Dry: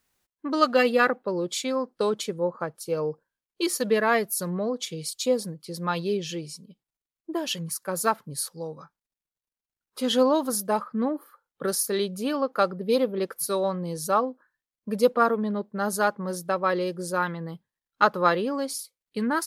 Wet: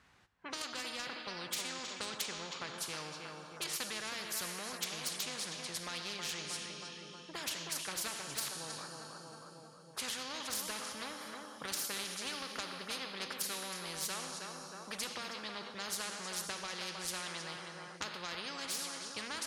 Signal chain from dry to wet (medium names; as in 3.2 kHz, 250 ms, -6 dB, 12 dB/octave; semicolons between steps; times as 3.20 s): amplifier tone stack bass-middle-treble 5-5-5; level-controlled noise filter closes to 1.2 kHz, open at -32 dBFS; treble shelf 3.6 kHz +11.5 dB; low-pass that closes with the level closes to 2.8 kHz, closed at -33 dBFS; compression, threshold -42 dBFS, peak gain reduction 15 dB; two-slope reverb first 0.57 s, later 3.5 s, from -18 dB, DRR 11.5 dB; saturation -31.5 dBFS, distortion -25 dB; high-pass 65 Hz; on a send: filtered feedback delay 317 ms, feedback 50%, low-pass 1.6 kHz, level -12 dB; on the sum: spectrum-flattening compressor 4:1; trim +11 dB